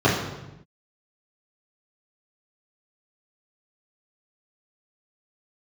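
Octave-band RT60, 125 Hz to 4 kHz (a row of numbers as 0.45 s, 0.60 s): 1.3 s, 1.2 s, 1.0 s, 0.90 s, 0.85 s, 0.80 s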